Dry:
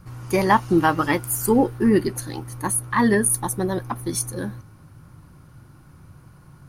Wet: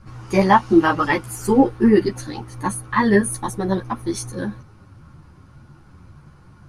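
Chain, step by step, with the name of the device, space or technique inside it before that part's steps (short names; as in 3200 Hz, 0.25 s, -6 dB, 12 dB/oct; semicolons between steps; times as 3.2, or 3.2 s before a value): string-machine ensemble chorus (ensemble effect; LPF 6500 Hz 12 dB/oct); gain +5 dB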